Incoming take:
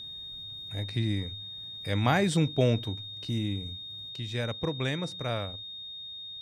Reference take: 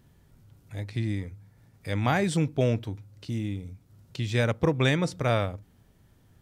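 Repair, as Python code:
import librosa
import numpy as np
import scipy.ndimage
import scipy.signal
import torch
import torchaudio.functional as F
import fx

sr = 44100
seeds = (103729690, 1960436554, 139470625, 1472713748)

y = fx.notch(x, sr, hz=3700.0, q=30.0)
y = fx.gain(y, sr, db=fx.steps((0.0, 0.0), (4.09, 7.5)))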